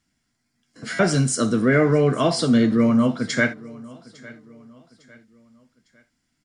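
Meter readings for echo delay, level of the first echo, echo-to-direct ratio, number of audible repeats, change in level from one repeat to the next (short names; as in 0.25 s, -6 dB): 0.854 s, -21.5 dB, -21.0 dB, 2, -8.0 dB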